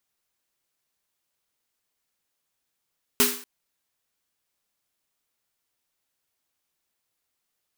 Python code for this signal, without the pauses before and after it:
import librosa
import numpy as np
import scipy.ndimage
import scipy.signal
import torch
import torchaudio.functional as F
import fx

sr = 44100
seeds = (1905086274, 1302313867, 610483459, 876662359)

y = fx.drum_snare(sr, seeds[0], length_s=0.24, hz=250.0, second_hz=410.0, noise_db=6, noise_from_hz=910.0, decay_s=0.4, noise_decay_s=0.47)